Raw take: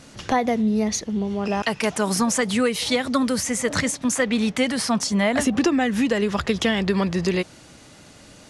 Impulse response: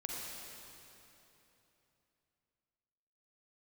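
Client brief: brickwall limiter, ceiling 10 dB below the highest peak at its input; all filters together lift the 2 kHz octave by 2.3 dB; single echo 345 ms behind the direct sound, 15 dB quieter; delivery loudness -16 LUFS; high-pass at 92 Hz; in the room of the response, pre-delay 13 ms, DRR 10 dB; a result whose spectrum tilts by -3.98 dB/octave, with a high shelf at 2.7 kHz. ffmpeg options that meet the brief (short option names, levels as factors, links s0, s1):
-filter_complex "[0:a]highpass=92,equalizer=f=2000:t=o:g=4,highshelf=f=2700:g=-3.5,alimiter=limit=0.119:level=0:latency=1,aecho=1:1:345:0.178,asplit=2[s0][s1];[1:a]atrim=start_sample=2205,adelay=13[s2];[s1][s2]afir=irnorm=-1:irlink=0,volume=0.282[s3];[s0][s3]amix=inputs=2:normalize=0,volume=3.35"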